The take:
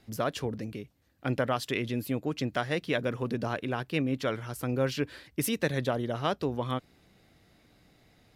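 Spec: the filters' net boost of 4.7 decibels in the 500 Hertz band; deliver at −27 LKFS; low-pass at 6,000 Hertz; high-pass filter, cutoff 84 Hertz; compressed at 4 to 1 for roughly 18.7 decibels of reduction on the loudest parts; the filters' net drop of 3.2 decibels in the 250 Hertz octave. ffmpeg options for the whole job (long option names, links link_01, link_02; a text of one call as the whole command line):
ffmpeg -i in.wav -af "highpass=84,lowpass=6000,equalizer=frequency=250:width_type=o:gain=-6,equalizer=frequency=500:width_type=o:gain=7,acompressor=threshold=-43dB:ratio=4,volume=18.5dB" out.wav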